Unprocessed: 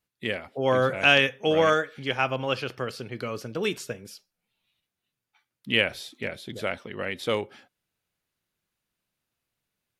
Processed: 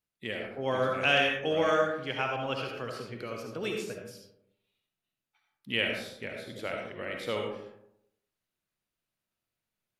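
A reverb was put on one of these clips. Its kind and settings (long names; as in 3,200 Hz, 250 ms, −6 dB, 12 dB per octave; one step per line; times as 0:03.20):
comb and all-pass reverb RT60 0.8 s, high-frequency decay 0.4×, pre-delay 30 ms, DRR 1 dB
level −7.5 dB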